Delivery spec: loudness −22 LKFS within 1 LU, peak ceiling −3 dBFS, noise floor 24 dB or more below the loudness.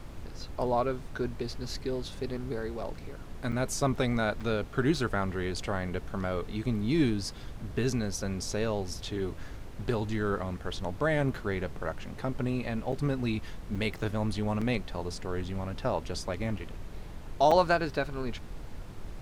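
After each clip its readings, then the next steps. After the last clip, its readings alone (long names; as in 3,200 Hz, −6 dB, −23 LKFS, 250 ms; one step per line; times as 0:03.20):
number of dropouts 6; longest dropout 5.4 ms; background noise floor −43 dBFS; target noise floor −56 dBFS; integrated loudness −32.0 LKFS; sample peak −10.5 dBFS; target loudness −22.0 LKFS
→ repair the gap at 0:03.52/0:04.40/0:12.92/0:13.75/0:14.61/0:17.51, 5.4 ms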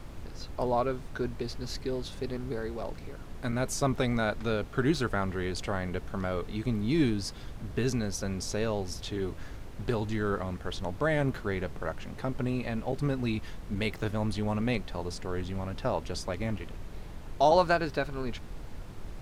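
number of dropouts 0; background noise floor −43 dBFS; target noise floor −56 dBFS
→ noise reduction from a noise print 13 dB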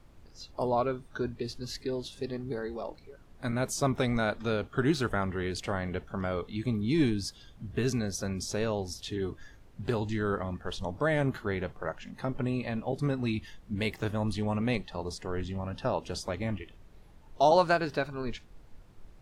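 background noise floor −55 dBFS; target noise floor −56 dBFS
→ noise reduction from a noise print 6 dB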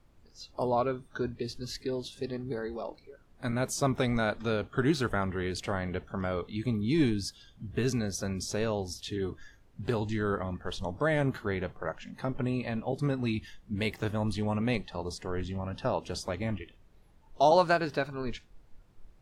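background noise floor −60 dBFS; integrated loudness −32.0 LKFS; sample peak −11.0 dBFS; target loudness −22.0 LKFS
→ level +10 dB
brickwall limiter −3 dBFS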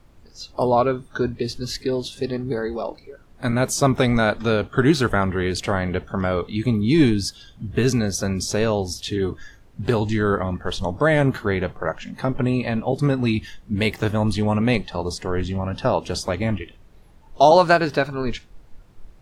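integrated loudness −22.0 LKFS; sample peak −3.0 dBFS; background noise floor −50 dBFS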